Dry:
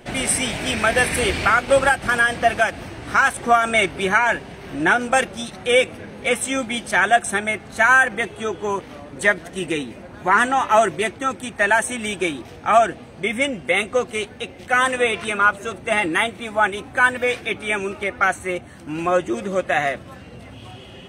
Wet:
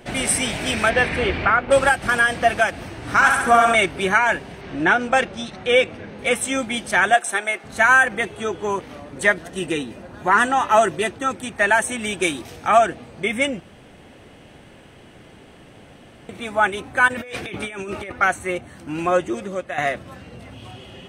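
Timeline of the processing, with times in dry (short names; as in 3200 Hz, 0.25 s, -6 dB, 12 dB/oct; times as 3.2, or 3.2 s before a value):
0.89–1.7 LPF 4200 Hz -> 1800 Hz
2.97–3.75 flutter echo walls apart 11.7 m, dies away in 0.99 s
4.61–6.19 LPF 5500 Hz
7.14–7.64 HPF 440 Hz
9.36–11.29 notch 2200 Hz, Q 9.6
12.22–12.68 high shelf 4300 Hz +10.5 dB
13.6–16.29 room tone
17.08–18.12 negative-ratio compressor -31 dBFS
19.17–19.78 fade out, to -11 dB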